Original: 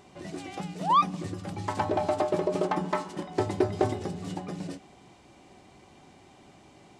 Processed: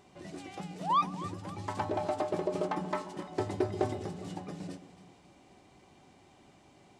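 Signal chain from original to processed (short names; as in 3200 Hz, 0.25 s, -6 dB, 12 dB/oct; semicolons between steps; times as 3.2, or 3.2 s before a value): echo with dull and thin repeats by turns 0.134 s, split 820 Hz, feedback 67%, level -12 dB; gain -5.5 dB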